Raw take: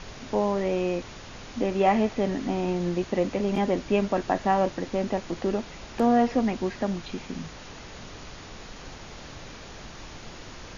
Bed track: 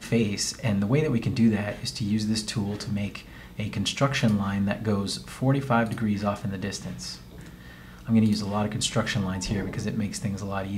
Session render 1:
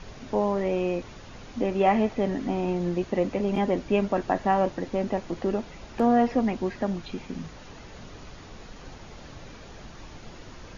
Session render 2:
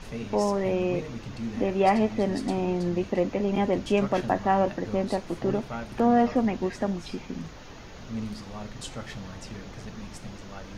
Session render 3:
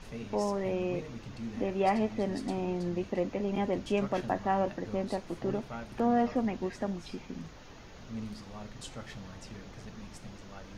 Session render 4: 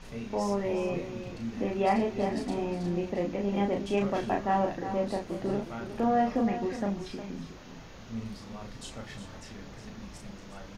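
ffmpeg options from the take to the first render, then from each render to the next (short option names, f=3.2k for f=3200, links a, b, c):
-af "afftdn=nr=6:nf=-43"
-filter_complex "[1:a]volume=-13dB[a];[0:a][a]amix=inputs=2:normalize=0"
-af "volume=-6dB"
-filter_complex "[0:a]asplit=2[a][b];[b]adelay=35,volume=-3.5dB[c];[a][c]amix=inputs=2:normalize=0,aecho=1:1:361:0.299"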